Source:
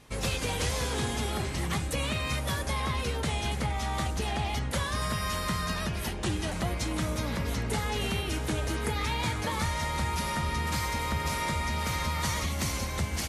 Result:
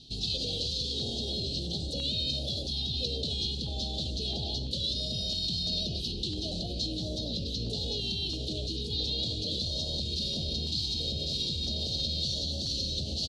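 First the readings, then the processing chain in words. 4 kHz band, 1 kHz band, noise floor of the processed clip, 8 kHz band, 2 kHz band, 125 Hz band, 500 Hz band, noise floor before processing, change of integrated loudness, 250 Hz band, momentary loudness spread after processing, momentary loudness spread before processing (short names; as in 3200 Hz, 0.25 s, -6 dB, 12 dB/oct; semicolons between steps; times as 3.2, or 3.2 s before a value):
+7.0 dB, -22.0 dB, -35 dBFS, -8.0 dB, -20.5 dB, -4.5 dB, -5.0 dB, -34 dBFS, -0.5 dB, -3.5 dB, 4 LU, 2 LU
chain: inverse Chebyshev band-stop 960–2200 Hz, stop band 40 dB; low shelf 120 Hz -4 dB; limiter -30.5 dBFS, peak gain reduction 11 dB; synth low-pass 4200 Hz, resonance Q 6; frequency-shifting echo 0.184 s, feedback 45%, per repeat +60 Hz, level -14 dB; stepped notch 3 Hz 540–2000 Hz; gain +3 dB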